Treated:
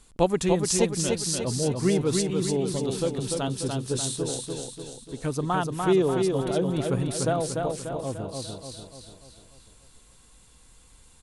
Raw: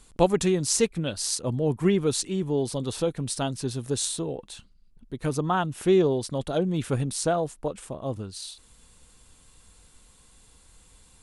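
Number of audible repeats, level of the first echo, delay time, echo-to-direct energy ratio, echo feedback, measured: 6, -4.0 dB, 294 ms, -2.5 dB, 51%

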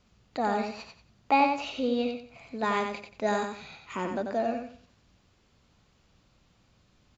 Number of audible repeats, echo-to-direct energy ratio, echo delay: 3, -5.0 dB, 91 ms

